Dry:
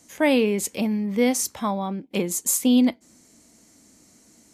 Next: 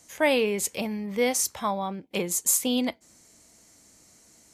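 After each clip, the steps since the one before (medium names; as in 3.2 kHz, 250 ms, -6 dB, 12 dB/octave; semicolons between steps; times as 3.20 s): peaking EQ 250 Hz -9.5 dB 1 oct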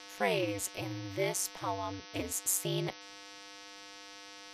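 mains buzz 400 Hz, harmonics 15, -42 dBFS -1 dB/octave; ring modulator 97 Hz; trim -5.5 dB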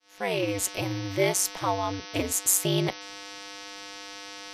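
fade-in on the opening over 0.63 s; trim +8.5 dB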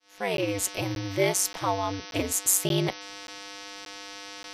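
crackling interface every 0.58 s, samples 512, zero, from 0.37 s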